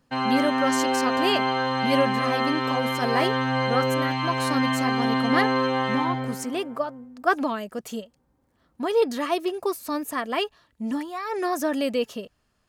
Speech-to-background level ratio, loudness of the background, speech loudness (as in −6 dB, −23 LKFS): −3.5 dB, −24.5 LKFS, −28.0 LKFS